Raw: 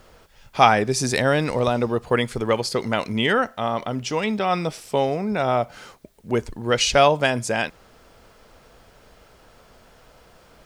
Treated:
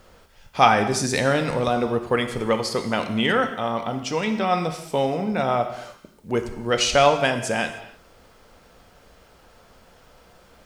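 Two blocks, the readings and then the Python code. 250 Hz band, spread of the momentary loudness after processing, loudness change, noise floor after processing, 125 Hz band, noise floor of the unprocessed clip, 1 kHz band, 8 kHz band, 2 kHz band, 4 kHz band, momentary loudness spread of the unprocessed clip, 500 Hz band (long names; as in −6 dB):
0.0 dB, 10 LU, −0.5 dB, −54 dBFS, −2.0 dB, −53 dBFS, −0.5 dB, −0.5 dB, −0.5 dB, −0.5 dB, 10 LU, −1.0 dB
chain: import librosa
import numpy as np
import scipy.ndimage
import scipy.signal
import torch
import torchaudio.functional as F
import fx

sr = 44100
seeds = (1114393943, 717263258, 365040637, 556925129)

y = fx.rev_gated(x, sr, seeds[0], gate_ms=340, shape='falling', drr_db=6.5)
y = y * librosa.db_to_amplitude(-1.5)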